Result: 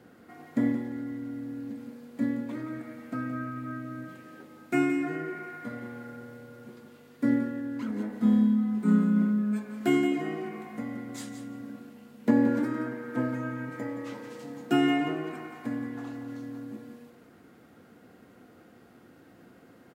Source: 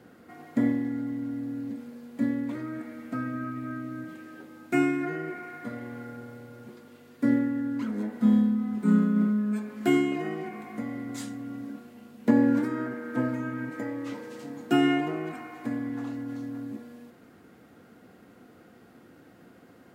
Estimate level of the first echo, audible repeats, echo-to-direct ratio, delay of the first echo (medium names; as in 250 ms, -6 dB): -10.0 dB, 2, -10.0 dB, 173 ms